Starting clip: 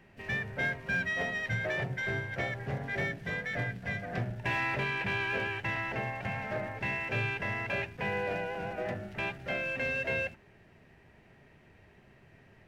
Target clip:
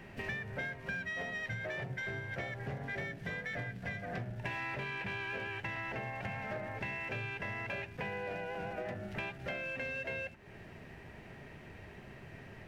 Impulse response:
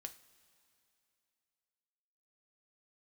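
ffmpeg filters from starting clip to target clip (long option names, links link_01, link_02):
-af "acompressor=threshold=-46dB:ratio=6,volume=8dB"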